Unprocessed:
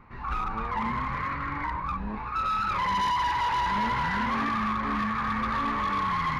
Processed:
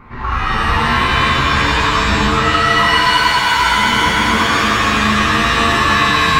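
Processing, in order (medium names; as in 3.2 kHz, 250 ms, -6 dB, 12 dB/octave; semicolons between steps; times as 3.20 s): in parallel at +0.5 dB: compressor with a negative ratio -33 dBFS, ratio -1; on the sum: pitch-shifted reverb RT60 2.1 s, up +7 st, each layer -2 dB, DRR -4.5 dB; trim +2 dB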